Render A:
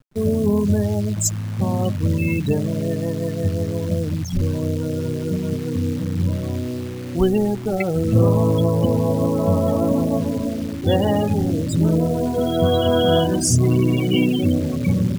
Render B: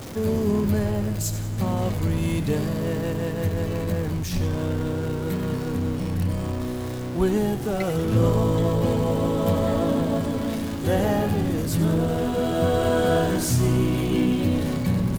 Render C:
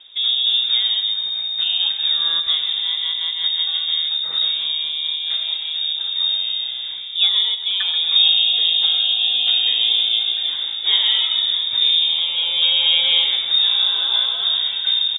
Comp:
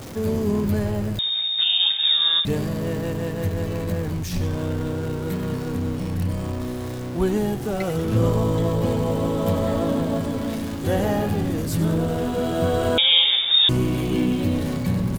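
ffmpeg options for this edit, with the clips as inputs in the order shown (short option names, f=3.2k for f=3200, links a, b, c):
-filter_complex "[2:a]asplit=2[a][b];[1:a]asplit=3[c][d][e];[c]atrim=end=1.192[f];[a]atrim=start=1.188:end=2.452[g];[d]atrim=start=2.448:end=12.982[h];[b]atrim=start=12.978:end=13.692[i];[e]atrim=start=13.688[j];[f][g]acrossfade=d=0.004:c1=hsin:c2=hsin[k];[k][h]acrossfade=d=0.004:c1=hsin:c2=hsin[l];[l][i]acrossfade=d=0.004:c1=hsin:c2=hsin[m];[m][j]acrossfade=d=0.004:c1=hsin:c2=hsin"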